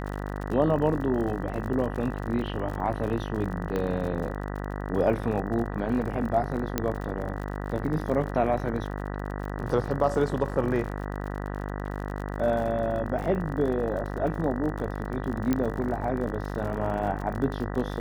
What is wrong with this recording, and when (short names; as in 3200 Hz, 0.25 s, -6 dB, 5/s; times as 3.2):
buzz 50 Hz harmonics 39 -33 dBFS
crackle 49/s -34 dBFS
3.76 pop -17 dBFS
6.78 pop -10 dBFS
15.53 pop -12 dBFS